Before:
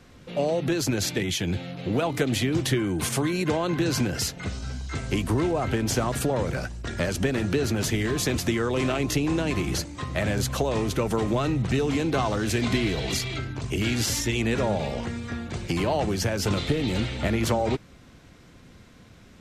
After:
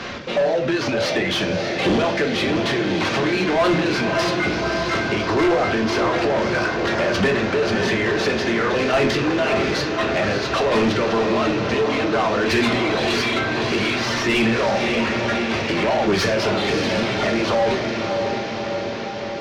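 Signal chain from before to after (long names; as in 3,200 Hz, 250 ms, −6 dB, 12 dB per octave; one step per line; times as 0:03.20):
variable-slope delta modulation 32 kbit/s
reverb reduction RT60 1.3 s
downward compressor 5 to 1, threshold −31 dBFS, peak gain reduction 11 dB
square-wave tremolo 0.56 Hz, depth 60%, duty 10%
feedback delay with all-pass diffusion 600 ms, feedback 67%, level −7 dB
on a send at −3 dB: convolution reverb RT60 0.55 s, pre-delay 3 ms
on the sum: mid-hump overdrive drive 26 dB, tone 2,500 Hz, clips at −17 dBFS
level +8 dB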